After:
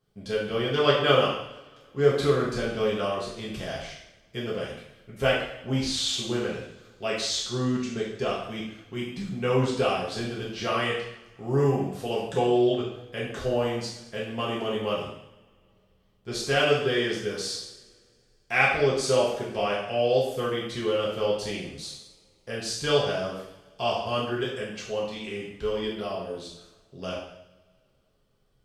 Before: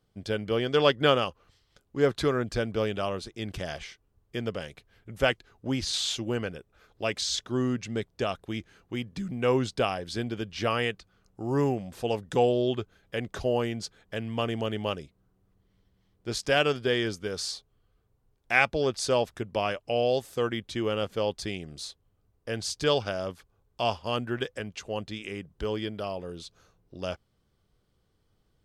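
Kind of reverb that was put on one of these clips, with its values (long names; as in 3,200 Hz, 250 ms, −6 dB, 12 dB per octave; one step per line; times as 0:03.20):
coupled-rooms reverb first 0.75 s, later 2.6 s, from −24 dB, DRR −6 dB
level −5 dB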